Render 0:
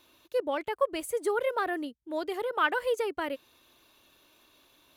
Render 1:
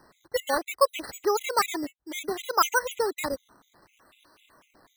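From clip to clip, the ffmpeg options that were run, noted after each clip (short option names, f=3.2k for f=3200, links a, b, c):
-af "equalizer=f=1.2k:t=o:w=1.5:g=6.5,acrusher=samples=12:mix=1:aa=0.000001:lfo=1:lforange=12:lforate=0.64,afftfilt=real='re*gt(sin(2*PI*4*pts/sr)*(1-2*mod(floor(b*sr/1024/2000),2)),0)':imag='im*gt(sin(2*PI*4*pts/sr)*(1-2*mod(floor(b*sr/1024/2000),2)),0)':win_size=1024:overlap=0.75,volume=3dB"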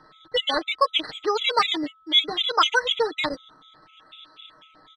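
-af "lowpass=f=3.4k:t=q:w=13,aecho=1:1:6.5:0.66,aeval=exprs='val(0)+0.00178*sin(2*PI*1300*n/s)':c=same"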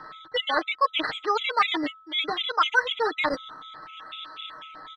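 -filter_complex "[0:a]areverse,acompressor=threshold=-30dB:ratio=6,areverse,equalizer=f=1.4k:t=o:w=2.3:g=10,acrossover=split=3400[a][b];[b]acompressor=threshold=-40dB:ratio=4:attack=1:release=60[c];[a][c]amix=inputs=2:normalize=0,volume=2.5dB"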